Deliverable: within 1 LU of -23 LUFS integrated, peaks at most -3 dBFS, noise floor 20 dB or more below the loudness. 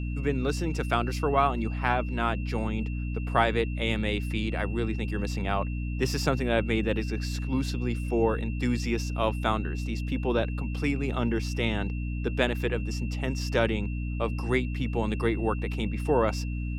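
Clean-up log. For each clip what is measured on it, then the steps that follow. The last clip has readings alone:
hum 60 Hz; highest harmonic 300 Hz; hum level -29 dBFS; steady tone 2.7 kHz; tone level -45 dBFS; loudness -28.5 LUFS; peak level -7.5 dBFS; loudness target -23.0 LUFS
-> hum notches 60/120/180/240/300 Hz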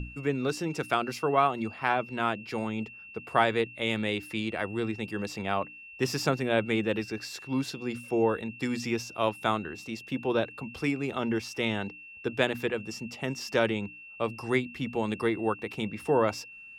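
hum not found; steady tone 2.7 kHz; tone level -45 dBFS
-> band-stop 2.7 kHz, Q 30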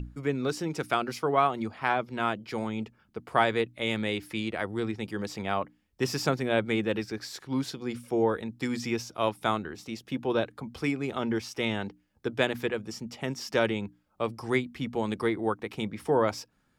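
steady tone not found; loudness -30.5 LUFS; peak level -8.5 dBFS; loudness target -23.0 LUFS
-> trim +7.5 dB; peak limiter -3 dBFS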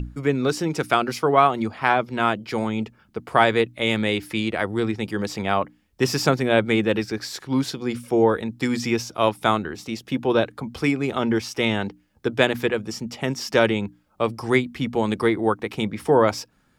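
loudness -23.0 LUFS; peak level -3.0 dBFS; noise floor -62 dBFS

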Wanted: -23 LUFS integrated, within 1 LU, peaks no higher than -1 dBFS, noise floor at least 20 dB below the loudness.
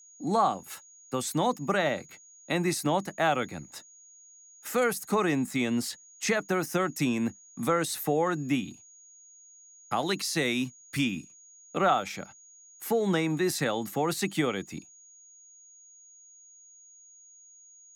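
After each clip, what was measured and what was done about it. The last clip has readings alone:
steady tone 6.7 kHz; tone level -52 dBFS; loudness -29.0 LUFS; peak level -13.5 dBFS; loudness target -23.0 LUFS
-> band-stop 6.7 kHz, Q 30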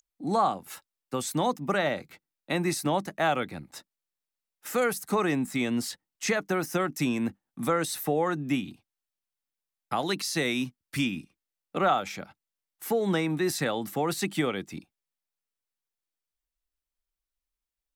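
steady tone not found; loudness -29.0 LUFS; peak level -13.5 dBFS; loudness target -23.0 LUFS
-> trim +6 dB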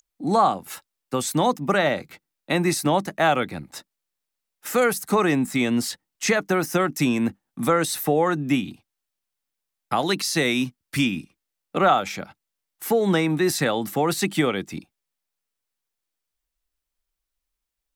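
loudness -23.0 LUFS; peak level -7.5 dBFS; noise floor -83 dBFS

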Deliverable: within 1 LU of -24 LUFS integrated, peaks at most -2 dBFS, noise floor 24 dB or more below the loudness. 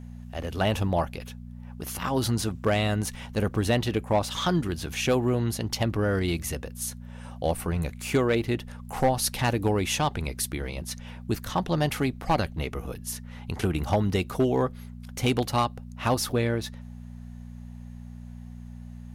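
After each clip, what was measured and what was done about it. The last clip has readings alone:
clipped samples 0.4%; clipping level -15.5 dBFS; hum 60 Hz; highest harmonic 240 Hz; hum level -38 dBFS; loudness -27.5 LUFS; peak level -15.5 dBFS; loudness target -24.0 LUFS
-> clip repair -15.5 dBFS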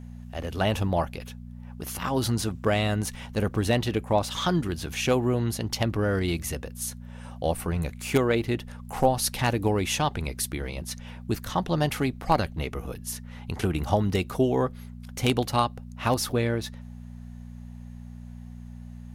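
clipped samples 0.0%; hum 60 Hz; highest harmonic 240 Hz; hum level -38 dBFS
-> de-hum 60 Hz, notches 4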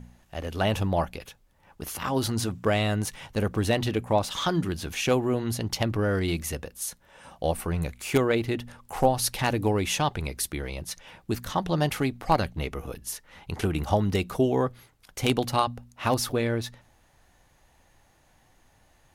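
hum not found; loudness -27.5 LUFS; peak level -7.0 dBFS; loudness target -24.0 LUFS
-> trim +3.5 dB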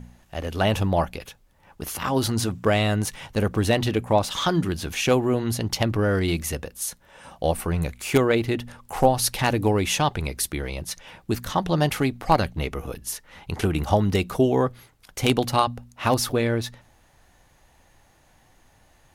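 loudness -24.0 LUFS; peak level -3.5 dBFS; noise floor -59 dBFS

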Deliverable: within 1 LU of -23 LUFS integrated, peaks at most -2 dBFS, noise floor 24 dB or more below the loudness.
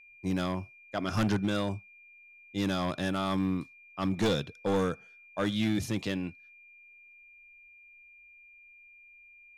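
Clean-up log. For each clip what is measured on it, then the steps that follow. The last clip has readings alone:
clipped samples 1.4%; clipping level -22.0 dBFS; steady tone 2.4 kHz; tone level -53 dBFS; loudness -31.5 LUFS; peak level -22.0 dBFS; loudness target -23.0 LUFS
-> clip repair -22 dBFS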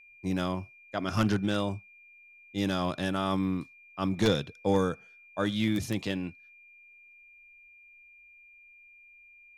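clipped samples 0.0%; steady tone 2.4 kHz; tone level -53 dBFS
-> band-stop 2.4 kHz, Q 30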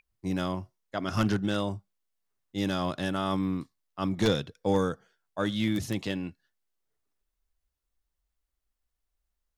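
steady tone not found; loudness -30.5 LUFS; peak level -13.0 dBFS; loudness target -23.0 LUFS
-> trim +7.5 dB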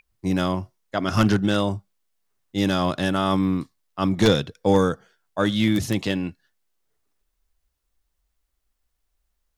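loudness -23.0 LUFS; peak level -5.5 dBFS; noise floor -76 dBFS

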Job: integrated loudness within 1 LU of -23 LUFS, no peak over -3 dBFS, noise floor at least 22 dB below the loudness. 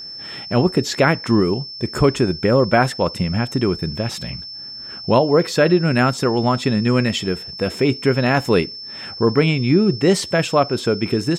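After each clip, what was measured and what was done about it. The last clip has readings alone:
steady tone 5.3 kHz; tone level -31 dBFS; loudness -18.5 LUFS; peak level -3.5 dBFS; loudness target -23.0 LUFS
-> band-stop 5.3 kHz, Q 30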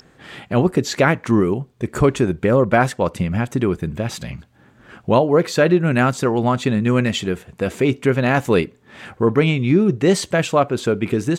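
steady tone not found; loudness -18.5 LUFS; peak level -3.5 dBFS; loudness target -23.0 LUFS
-> trim -4.5 dB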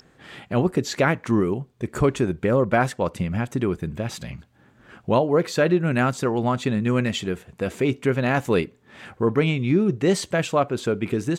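loudness -23.0 LUFS; peak level -8.0 dBFS; noise floor -57 dBFS

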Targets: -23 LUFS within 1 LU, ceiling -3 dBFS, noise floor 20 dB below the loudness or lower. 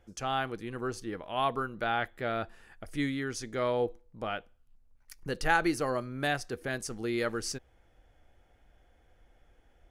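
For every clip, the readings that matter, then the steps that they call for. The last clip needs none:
loudness -33.0 LUFS; peak level -12.0 dBFS; loudness target -23.0 LUFS
-> trim +10 dB; peak limiter -3 dBFS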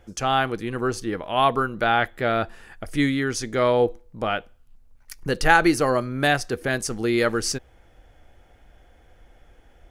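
loudness -23.0 LUFS; peak level -3.0 dBFS; noise floor -55 dBFS

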